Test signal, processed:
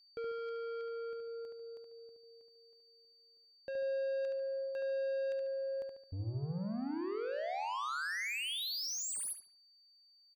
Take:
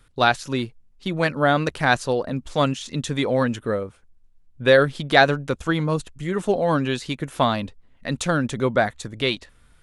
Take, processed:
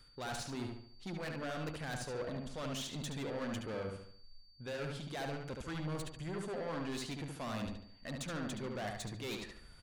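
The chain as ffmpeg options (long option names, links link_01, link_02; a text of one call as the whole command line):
ffmpeg -i in.wav -filter_complex "[0:a]areverse,acompressor=threshold=-28dB:ratio=5,areverse,asoftclip=type=tanh:threshold=-35dB,aeval=exprs='val(0)+0.00112*sin(2*PI*4600*n/s)':channel_layout=same,asplit=2[link_01][link_02];[link_02]adelay=72,lowpass=frequency=4000:poles=1,volume=-3.5dB,asplit=2[link_03][link_04];[link_04]adelay=72,lowpass=frequency=4000:poles=1,volume=0.43,asplit=2[link_05][link_06];[link_06]adelay=72,lowpass=frequency=4000:poles=1,volume=0.43,asplit=2[link_07][link_08];[link_08]adelay=72,lowpass=frequency=4000:poles=1,volume=0.43,asplit=2[link_09][link_10];[link_10]adelay=72,lowpass=frequency=4000:poles=1,volume=0.43[link_11];[link_01][link_03][link_05][link_07][link_09][link_11]amix=inputs=6:normalize=0,volume=-3.5dB" out.wav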